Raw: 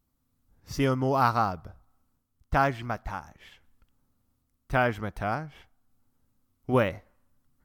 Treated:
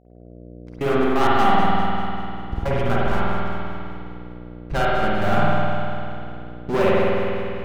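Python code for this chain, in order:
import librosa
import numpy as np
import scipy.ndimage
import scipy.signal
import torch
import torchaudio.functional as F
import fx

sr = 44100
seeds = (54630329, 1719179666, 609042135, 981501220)

y = np.where(x < 0.0, 10.0 ** (-7.0 / 20.0) * x, x)
y = scipy.signal.sosfilt(scipy.signal.butter(2, 2400.0, 'lowpass', fs=sr, output='sos'), y)
y = fx.notch(y, sr, hz=1800.0, q=8.3)
y = y + 0.37 * np.pad(y, (int(5.1 * sr / 1000.0), 0))[:len(y)]
y = fx.leveller(y, sr, passes=5)
y = fx.step_gate(y, sr, bpm=130, pattern='.xxxxx.xx.x', floor_db=-24.0, edge_ms=4.5)
y = fx.dmg_buzz(y, sr, base_hz=60.0, harmonics=12, level_db=-48.0, tilt_db=-3, odd_only=False)
y = fx.echo_split(y, sr, split_hz=1000.0, low_ms=110, high_ms=196, feedback_pct=52, wet_db=-10.0)
y = fx.rev_spring(y, sr, rt60_s=2.6, pass_ms=(50,), chirp_ms=70, drr_db=-7.0)
y = F.gain(torch.from_numpy(y), -8.5).numpy()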